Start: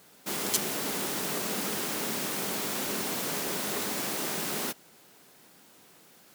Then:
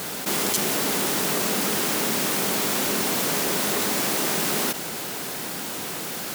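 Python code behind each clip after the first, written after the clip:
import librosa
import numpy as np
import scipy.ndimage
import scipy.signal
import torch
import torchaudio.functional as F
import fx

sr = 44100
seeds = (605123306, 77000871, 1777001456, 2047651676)

y = fx.env_flatten(x, sr, amount_pct=70)
y = F.gain(torch.from_numpy(y), 2.0).numpy()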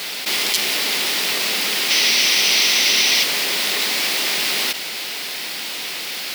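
y = fx.highpass(x, sr, hz=530.0, slope=6)
y = fx.band_shelf(y, sr, hz=3200.0, db=10.5, octaves=1.7)
y = fx.spec_paint(y, sr, seeds[0], shape='noise', start_s=1.9, length_s=1.34, low_hz=1900.0, high_hz=6200.0, level_db=-18.0)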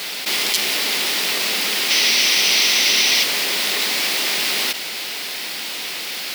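y = fx.hum_notches(x, sr, base_hz=50, count=3)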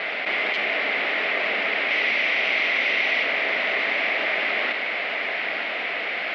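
y = fx.cabinet(x, sr, low_hz=280.0, low_slope=12, high_hz=2400.0, hz=(360.0, 650.0, 940.0, 2100.0), db=(-4, 8, -5, 5))
y = y + 10.0 ** (-10.0 / 20.0) * np.pad(y, (int(913 * sr / 1000.0), 0))[:len(y)]
y = fx.env_flatten(y, sr, amount_pct=50)
y = F.gain(torch.from_numpy(y), -2.5).numpy()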